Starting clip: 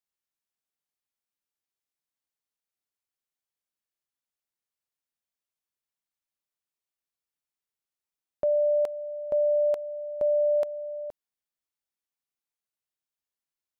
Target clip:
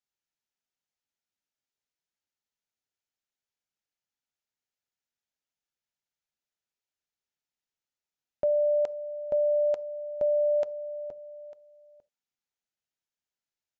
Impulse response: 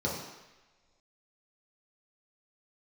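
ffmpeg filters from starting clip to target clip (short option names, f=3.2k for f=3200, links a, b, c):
-filter_complex "[0:a]aecho=1:1:899:0.1,asplit=2[a][b];[1:a]atrim=start_sample=2205,atrim=end_sample=3969[c];[b][c]afir=irnorm=-1:irlink=0,volume=-26.5dB[d];[a][d]amix=inputs=2:normalize=0,aresample=16000,aresample=44100,asuperstop=centerf=1100:order=4:qfactor=6.2"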